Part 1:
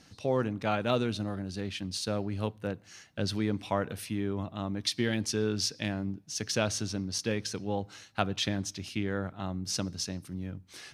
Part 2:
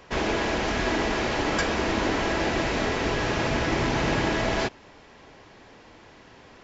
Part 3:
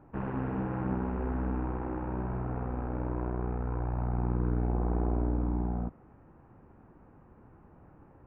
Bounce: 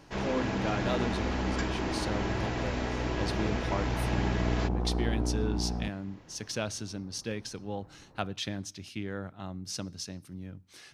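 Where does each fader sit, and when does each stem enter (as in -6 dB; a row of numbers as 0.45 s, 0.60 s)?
-4.5 dB, -10.0 dB, -1.0 dB; 0.00 s, 0.00 s, 0.00 s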